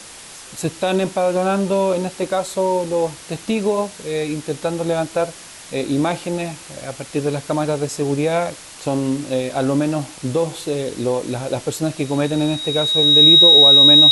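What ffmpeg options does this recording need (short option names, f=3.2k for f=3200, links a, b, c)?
-af "bandreject=f=3.8k:w=30,afftdn=nr=20:nf=-38"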